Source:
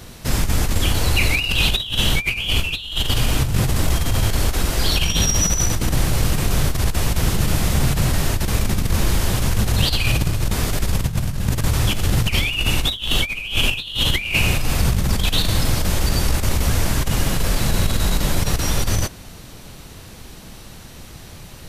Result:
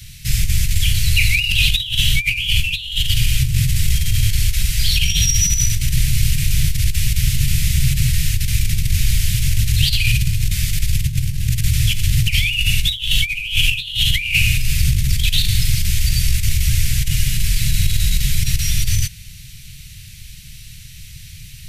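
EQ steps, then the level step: Chebyshev band-stop 140–2200 Hz, order 3; +3.5 dB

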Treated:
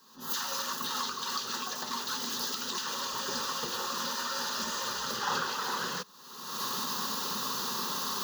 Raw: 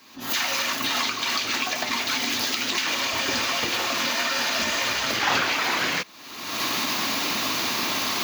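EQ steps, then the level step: static phaser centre 450 Hz, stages 8; -5.0 dB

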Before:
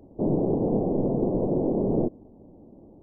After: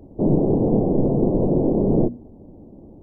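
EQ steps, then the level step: bass shelf 230 Hz +7.5 dB; hum notches 60/120/180/240 Hz; +3.0 dB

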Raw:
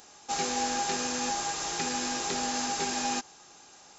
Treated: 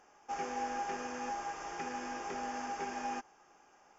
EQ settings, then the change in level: boxcar filter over 11 samples; peaking EQ 120 Hz -9 dB 2.4 oct; -4.0 dB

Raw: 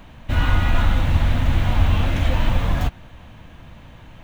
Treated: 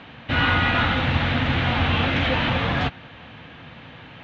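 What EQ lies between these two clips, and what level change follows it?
cabinet simulation 180–4100 Hz, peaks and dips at 200 Hz -7 dB, 330 Hz -6 dB, 620 Hz -7 dB, 990 Hz -6 dB; +8.0 dB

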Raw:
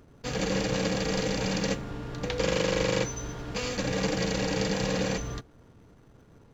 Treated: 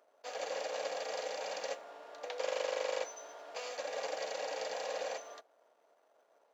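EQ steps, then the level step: ladder high-pass 570 Hz, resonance 65%; 0.0 dB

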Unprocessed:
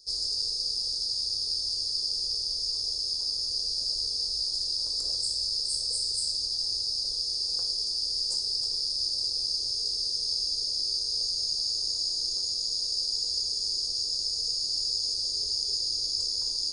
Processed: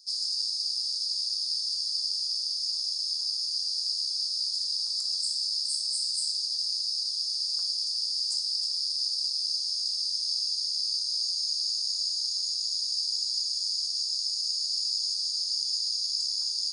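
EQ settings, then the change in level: high-pass 1.3 kHz 12 dB/octave; 0.0 dB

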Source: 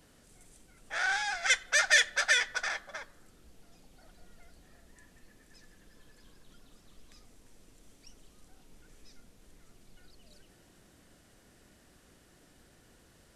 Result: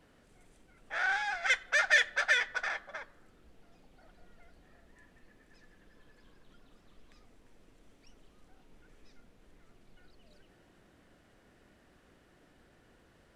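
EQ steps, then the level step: tone controls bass -3 dB, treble -13 dB; 0.0 dB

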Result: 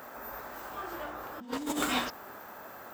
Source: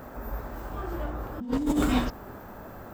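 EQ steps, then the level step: high-pass 1.3 kHz 6 dB/octave; +4.0 dB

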